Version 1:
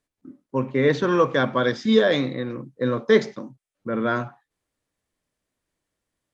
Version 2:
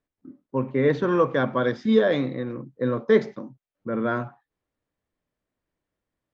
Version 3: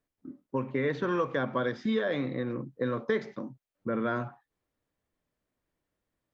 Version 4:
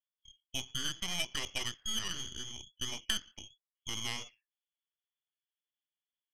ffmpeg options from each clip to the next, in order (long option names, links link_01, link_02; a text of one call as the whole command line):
ffmpeg -i in.wav -af "lowpass=frequency=1700:poles=1,volume=-1dB" out.wav
ffmpeg -i in.wav -filter_complex "[0:a]acrossover=split=1200|2900[link_01][link_02][link_03];[link_01]acompressor=threshold=-28dB:ratio=4[link_04];[link_02]acompressor=threshold=-36dB:ratio=4[link_05];[link_03]acompressor=threshold=-51dB:ratio=4[link_06];[link_04][link_05][link_06]amix=inputs=3:normalize=0" out.wav
ffmpeg -i in.wav -af "lowpass=frequency=3000:width_type=q:width=0.5098,lowpass=frequency=3000:width_type=q:width=0.6013,lowpass=frequency=3000:width_type=q:width=0.9,lowpass=frequency=3000:width_type=q:width=2.563,afreqshift=-3500,aeval=exprs='0.188*(cos(1*acos(clip(val(0)/0.188,-1,1)))-cos(1*PI/2))+0.0531*(cos(3*acos(clip(val(0)/0.188,-1,1)))-cos(3*PI/2))+0.015*(cos(6*acos(clip(val(0)/0.188,-1,1)))-cos(6*PI/2))':channel_layout=same" out.wav